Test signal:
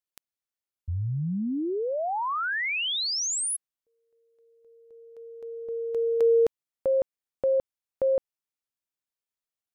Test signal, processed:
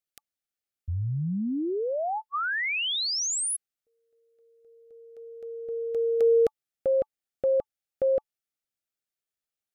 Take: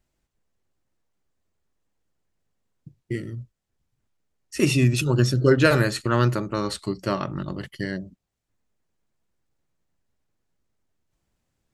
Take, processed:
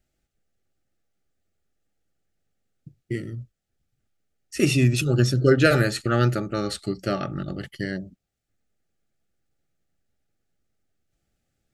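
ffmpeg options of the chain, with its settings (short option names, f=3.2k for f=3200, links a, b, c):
-af "asuperstop=centerf=1000:order=20:qfactor=3.6"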